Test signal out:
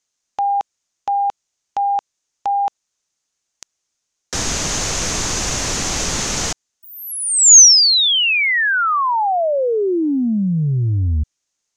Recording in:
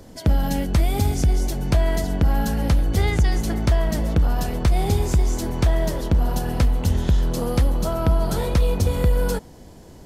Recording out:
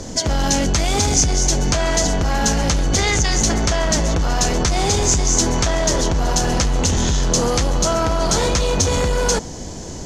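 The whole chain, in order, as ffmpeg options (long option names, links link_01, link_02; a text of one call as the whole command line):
ffmpeg -i in.wav -af "apsyclip=27dB,lowpass=frequency=6500:width_type=q:width=4.6,volume=-14.5dB" out.wav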